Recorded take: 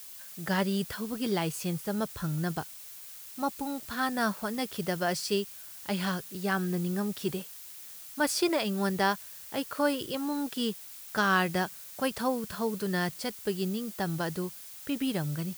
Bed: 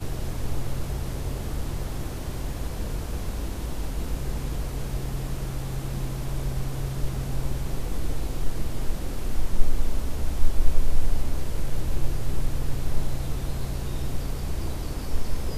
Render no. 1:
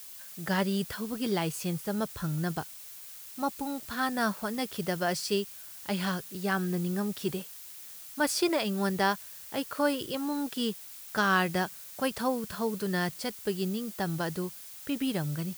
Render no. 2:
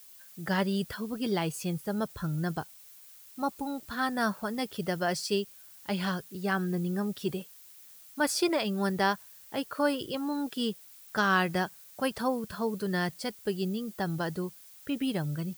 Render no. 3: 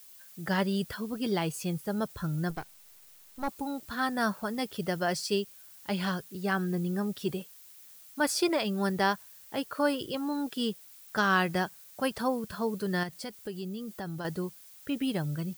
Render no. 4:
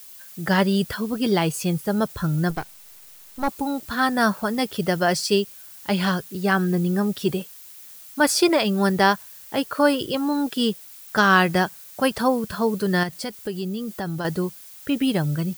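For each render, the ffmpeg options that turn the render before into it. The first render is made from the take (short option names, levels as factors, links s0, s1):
-af anull
-af "afftdn=nr=8:nf=-46"
-filter_complex "[0:a]asettb=1/sr,asplit=3[s0][s1][s2];[s0]atrim=end=2.504[s3];[s1]atrim=start=2.5:end=3.48,asetpts=PTS-STARTPTS,afade=t=in:d=0.004:c=qsin,afade=t=out:st=0.976:d=0.004:c=qsin,aeval=exprs='if(lt(val(0),0),0.251*val(0),val(0))':c=same[s4];[s2]atrim=start=3.476[s5];[s3][s4]acrossfade=d=0.004:c1=hsin:c2=qsin[s6];[s6][s5]acrossfade=d=0.004:c1=qsin:c2=hsin,asettb=1/sr,asplit=3[s7][s8][s9];[s7]atrim=end=13.034[s10];[s8]atrim=start=13.03:end=14.25,asetpts=PTS-STARTPTS,afade=t=in:d=0.004:c=qsin,afade=t=out:st=1.216:d=0.004:c=qsin,acompressor=threshold=0.0158:ratio=2.5:attack=3.2:release=140:knee=1:detection=peak[s11];[s9]atrim=start=14.246[s12];[s10][s11]acrossfade=d=0.004:c1=hsin:c2=qsin[s13];[s13][s12]acrossfade=d=0.004:c1=qsin:c2=hsin"
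-af "volume=2.82"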